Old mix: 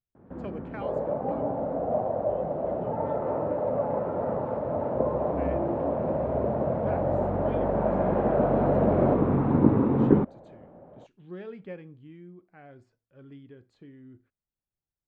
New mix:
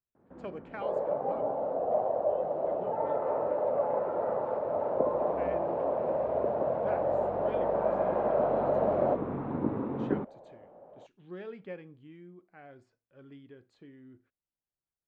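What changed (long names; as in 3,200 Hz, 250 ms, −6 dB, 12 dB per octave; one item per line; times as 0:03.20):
first sound −7.5 dB
master: add low-shelf EQ 200 Hz −9 dB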